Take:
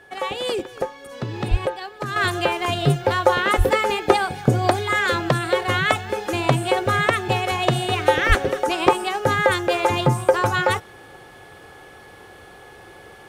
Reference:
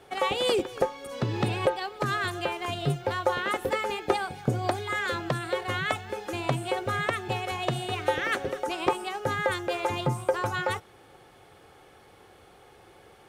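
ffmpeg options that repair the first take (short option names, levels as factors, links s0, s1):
-filter_complex "[0:a]bandreject=f=1700:w=30,asplit=3[s0][s1][s2];[s0]afade=t=out:st=1.5:d=0.02[s3];[s1]highpass=f=140:w=0.5412,highpass=f=140:w=1.3066,afade=t=in:st=1.5:d=0.02,afade=t=out:st=1.62:d=0.02[s4];[s2]afade=t=in:st=1.62:d=0.02[s5];[s3][s4][s5]amix=inputs=3:normalize=0,asplit=3[s6][s7][s8];[s6]afade=t=out:st=3.57:d=0.02[s9];[s7]highpass=f=140:w=0.5412,highpass=f=140:w=1.3066,afade=t=in:st=3.57:d=0.02,afade=t=out:st=3.69:d=0.02[s10];[s8]afade=t=in:st=3.69:d=0.02[s11];[s9][s10][s11]amix=inputs=3:normalize=0,asplit=3[s12][s13][s14];[s12]afade=t=out:st=8.28:d=0.02[s15];[s13]highpass=f=140:w=0.5412,highpass=f=140:w=1.3066,afade=t=in:st=8.28:d=0.02,afade=t=out:st=8.4:d=0.02[s16];[s14]afade=t=in:st=8.4:d=0.02[s17];[s15][s16][s17]amix=inputs=3:normalize=0,asetnsamples=n=441:p=0,asendcmd='2.16 volume volume -9dB',volume=1"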